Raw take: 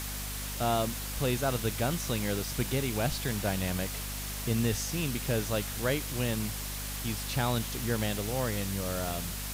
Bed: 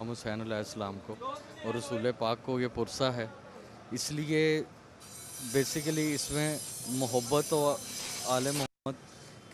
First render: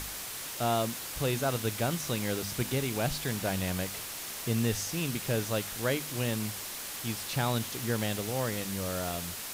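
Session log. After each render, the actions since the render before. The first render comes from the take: de-hum 50 Hz, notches 5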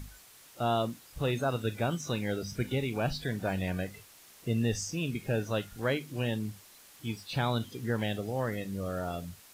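noise print and reduce 16 dB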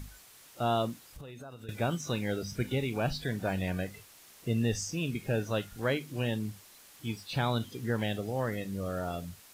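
1.03–1.69 s: compression 10:1, threshold -42 dBFS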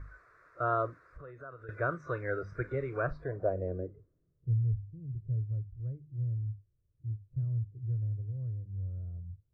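low-pass sweep 1.4 kHz -> 110 Hz, 3.00–4.58 s; static phaser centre 830 Hz, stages 6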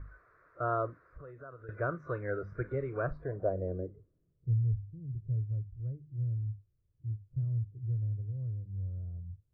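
low-pass 1.3 kHz 6 dB/octave; peaking EQ 210 Hz +4.5 dB 0.24 oct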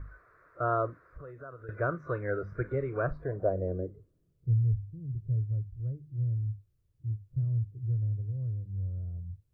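trim +3 dB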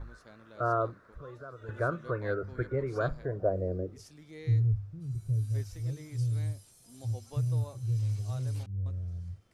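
add bed -19 dB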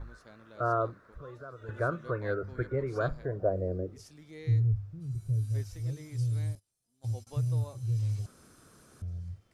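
6.55–7.27 s: gate -47 dBFS, range -24 dB; 8.26–9.02 s: room tone

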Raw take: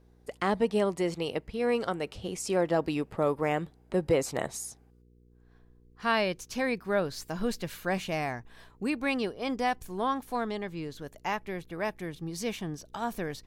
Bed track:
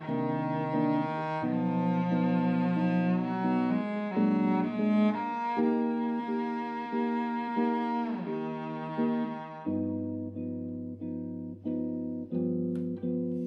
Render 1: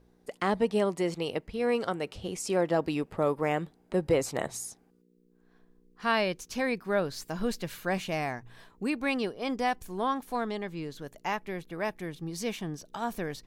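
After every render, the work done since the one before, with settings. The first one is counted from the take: de-hum 60 Hz, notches 2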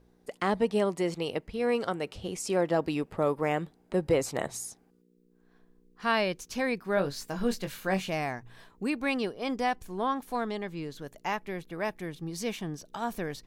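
6.95–8.10 s: doubling 21 ms -7 dB; 9.65–10.17 s: treble shelf 8.7 kHz -> 5 kHz -6 dB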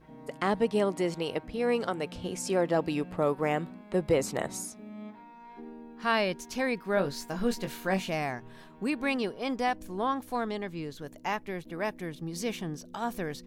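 add bed track -18 dB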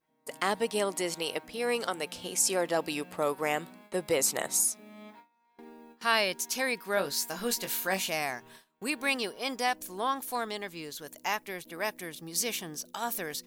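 gate with hold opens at -38 dBFS; RIAA curve recording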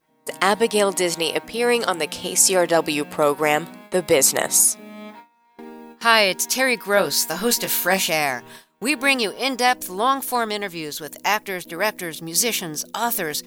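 trim +11 dB; peak limiter -1 dBFS, peak gain reduction 1 dB

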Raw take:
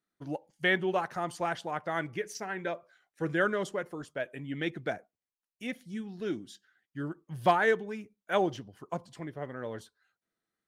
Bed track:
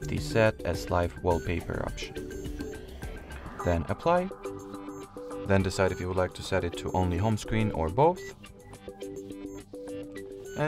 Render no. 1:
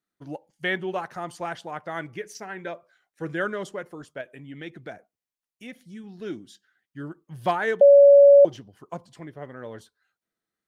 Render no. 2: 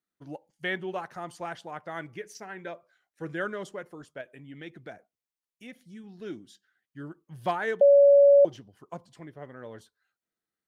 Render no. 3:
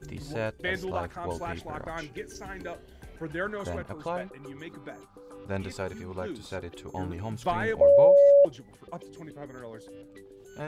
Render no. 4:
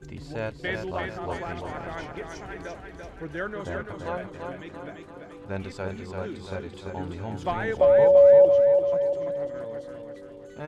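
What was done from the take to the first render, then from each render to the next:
4.21–6.04 s: compression 1.5:1, threshold -42 dBFS; 7.81–8.45 s: bleep 565 Hz -8.5 dBFS
trim -4.5 dB
add bed track -8.5 dB
distance through air 54 m; on a send: feedback delay 340 ms, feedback 52%, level -5 dB

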